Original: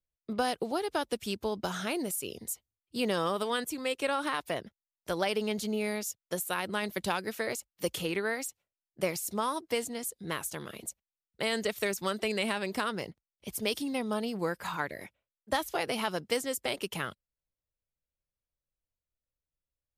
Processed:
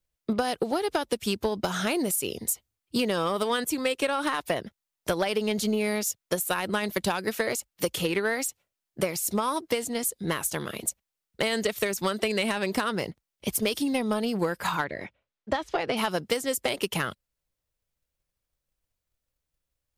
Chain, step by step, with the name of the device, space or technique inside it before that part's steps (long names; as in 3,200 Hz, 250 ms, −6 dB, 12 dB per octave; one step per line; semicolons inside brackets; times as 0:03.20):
drum-bus smash (transient designer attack +5 dB, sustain 0 dB; downward compressor, threshold −29 dBFS, peak gain reduction 9 dB; soft clipping −23 dBFS, distortion −19 dB)
0:14.84–0:15.97: high-frequency loss of the air 130 metres
level +8 dB